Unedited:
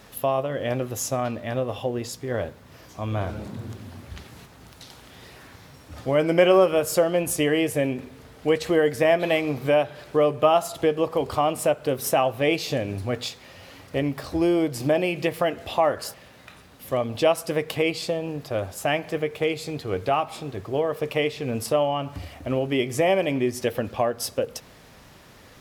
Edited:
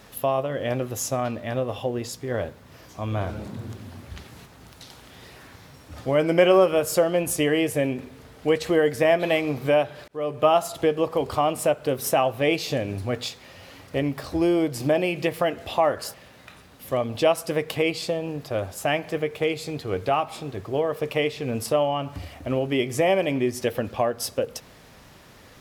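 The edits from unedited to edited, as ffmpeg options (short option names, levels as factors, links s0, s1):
-filter_complex "[0:a]asplit=2[s0][s1];[s0]atrim=end=10.08,asetpts=PTS-STARTPTS,afade=t=out:st=10.076:d=0.004:c=hsin[s2];[s1]atrim=start=10.08,asetpts=PTS-STARTPTS,afade=t=in:d=0.39[s3];[s2][s3]concat=n=2:v=0:a=1"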